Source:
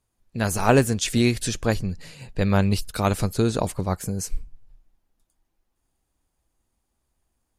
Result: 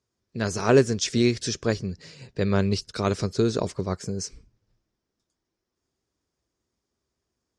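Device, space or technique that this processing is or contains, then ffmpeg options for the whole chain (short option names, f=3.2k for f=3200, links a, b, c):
car door speaker: -af "highpass=85,equalizer=f=400:t=q:w=4:g=7,equalizer=f=810:t=q:w=4:g=-7,equalizer=f=2.7k:t=q:w=4:g=-3,equalizer=f=5.4k:t=q:w=4:g=8,lowpass=f=7.2k:w=0.5412,lowpass=f=7.2k:w=1.3066,volume=-2.5dB"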